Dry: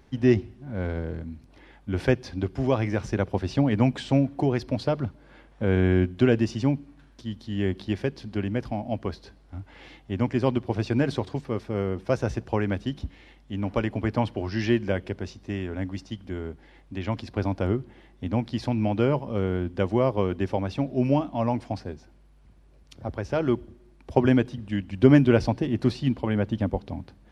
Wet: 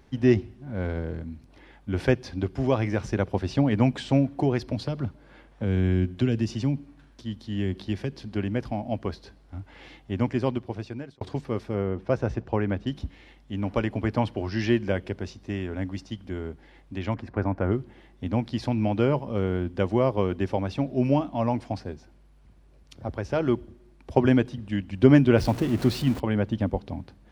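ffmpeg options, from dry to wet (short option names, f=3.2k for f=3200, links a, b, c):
-filter_complex "[0:a]asettb=1/sr,asplit=3[a][b][c];[a]atrim=end=4.724[d];[b]atrim=start=4.72:end=8.24,asetpts=PTS-STARTPTS,afade=t=in:d=0.004:c=qsin,afade=t=out:st=3.516:d=0.004:c=qsin,acrossover=split=270|3000[e][f][g];[f]acompressor=threshold=-32dB:ratio=6:attack=3.2:release=140:knee=2.83:detection=peak[h];[e][h][g]amix=inputs=3:normalize=0[i];[c]atrim=start=8.236[j];[d][i]acrossfade=d=0.004:c1=hsin:c2=qsin[k];[k][j]acrossfade=d=0.004:c1=qsin:c2=hsin,asettb=1/sr,asplit=3[l][m][n];[l]atrim=end=11.754[o];[m]atrim=start=11.75:end=12.87,asetpts=PTS-STARTPTS,afade=t=in:d=0.004:c=qsin,afade=t=out:st=1.116:d=0.004:c=qsin,aemphasis=mode=reproduction:type=75kf[p];[n]atrim=start=12.866[q];[o][p]acrossfade=d=0.004:c1=hsin:c2=qsin[r];[r][q]acrossfade=d=0.004:c1=qsin:c2=hsin,asettb=1/sr,asplit=3[s][t][u];[s]atrim=end=17.144[v];[t]atrim=start=17.14:end=17.72,asetpts=PTS-STARTPTS,afade=t=in:d=0.004:c=qsin,afade=t=out:st=0.576:d=0.004:c=qsin,highshelf=f=2.5k:t=q:w=1.5:g=-12[w];[u]atrim=start=17.716[x];[v][w]acrossfade=d=0.004:c1=hsin:c2=qsin[y];[y][x]acrossfade=d=0.004:c1=qsin:c2=hsin,asettb=1/sr,asplit=3[z][aa][ab];[z]atrim=end=25.384[ac];[aa]atrim=start=25.38:end=26.2,asetpts=PTS-STARTPTS,afade=t=in:d=0.004:c=qsin,afade=t=out:st=0.816:d=0.004:c=qsin,aeval=exprs='val(0)+0.5*0.0251*sgn(val(0))':c=same[ad];[ab]atrim=start=26.196[ae];[ac][ad]acrossfade=d=0.004:c1=hsin:c2=qsin[af];[af][ae]acrossfade=d=0.004:c1=qsin:c2=hsin,asplit=2[ag][ah];[ag]atrim=end=11.21,asetpts=PTS-STARTPTS,afade=t=out:st=10.22:d=0.99[ai];[ah]atrim=start=11.21,asetpts=PTS-STARTPTS,afade=t=in:d=0.004:c=hsin[aj];[ai][aj]concat=n=2:v=0:a=1"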